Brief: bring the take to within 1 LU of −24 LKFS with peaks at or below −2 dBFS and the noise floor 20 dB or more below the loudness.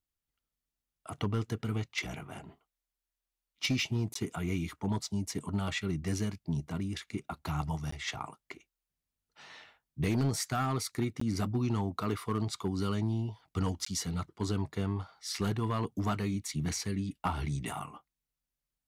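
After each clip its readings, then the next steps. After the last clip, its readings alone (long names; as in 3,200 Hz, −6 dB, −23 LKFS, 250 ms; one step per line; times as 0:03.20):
share of clipped samples 0.7%; peaks flattened at −23.5 dBFS; number of dropouts 4; longest dropout 14 ms; integrated loudness −34.5 LKFS; sample peak −23.5 dBFS; target loudness −24.0 LKFS
→ clipped peaks rebuilt −23.5 dBFS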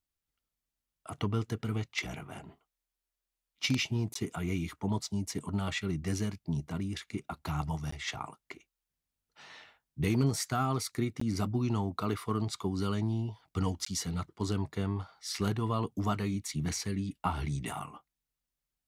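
share of clipped samples 0.0%; number of dropouts 4; longest dropout 14 ms
→ repair the gap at 0:04.14/0:07.91/0:11.20/0:13.85, 14 ms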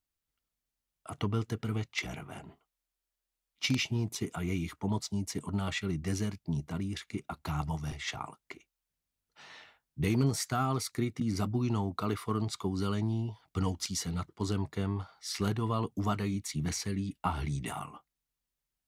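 number of dropouts 0; integrated loudness −34.0 LKFS; sample peak −14.5 dBFS; target loudness −24.0 LKFS
→ level +10 dB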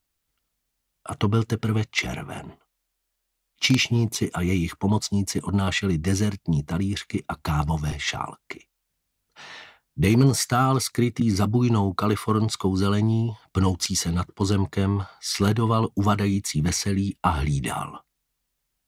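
integrated loudness −24.0 LKFS; sample peak −4.5 dBFS; background noise floor −78 dBFS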